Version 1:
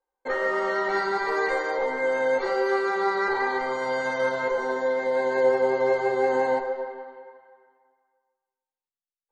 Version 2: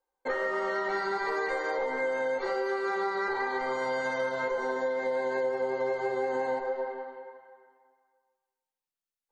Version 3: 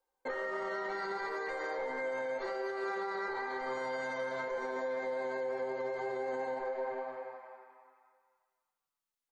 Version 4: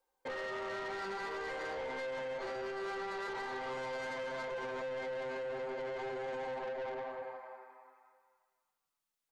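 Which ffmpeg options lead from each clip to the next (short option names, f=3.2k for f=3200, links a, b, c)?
-af "acompressor=threshold=-27dB:ratio=6"
-filter_complex "[0:a]asplit=5[a][b][c][d][e];[b]adelay=264,afreqshift=120,volume=-16dB[f];[c]adelay=528,afreqshift=240,volume=-22.7dB[g];[d]adelay=792,afreqshift=360,volume=-29.5dB[h];[e]adelay=1056,afreqshift=480,volume=-36.2dB[i];[a][f][g][h][i]amix=inputs=5:normalize=0,alimiter=level_in=5dB:limit=-24dB:level=0:latency=1:release=135,volume=-5dB"
-af "asoftclip=type=tanh:threshold=-38.5dB,volume=2dB"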